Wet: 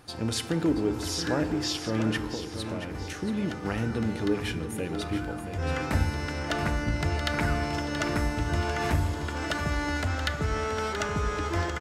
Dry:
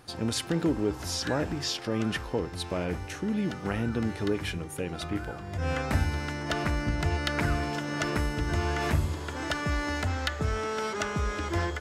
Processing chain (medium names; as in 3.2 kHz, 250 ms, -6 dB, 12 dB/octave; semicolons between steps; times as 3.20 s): 2.21–2.95 s: compression, threshold -33 dBFS, peak gain reduction 9.5 dB; feedback delay 678 ms, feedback 41%, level -10 dB; FDN reverb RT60 1.7 s, low-frequency decay 0.9×, high-frequency decay 0.45×, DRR 10.5 dB